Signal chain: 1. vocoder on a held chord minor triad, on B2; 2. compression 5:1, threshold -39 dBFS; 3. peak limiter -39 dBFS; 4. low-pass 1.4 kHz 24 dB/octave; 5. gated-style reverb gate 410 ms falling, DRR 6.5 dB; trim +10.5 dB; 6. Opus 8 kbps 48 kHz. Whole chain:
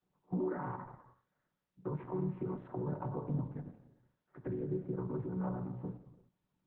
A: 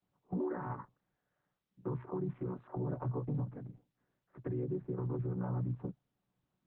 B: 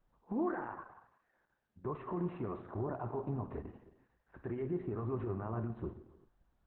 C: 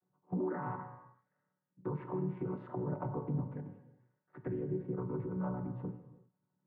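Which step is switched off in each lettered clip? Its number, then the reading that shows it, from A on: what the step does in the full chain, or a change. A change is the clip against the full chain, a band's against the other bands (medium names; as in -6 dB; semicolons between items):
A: 5, crest factor change -4.0 dB; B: 1, 2 kHz band +4.0 dB; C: 6, 2 kHz band +2.0 dB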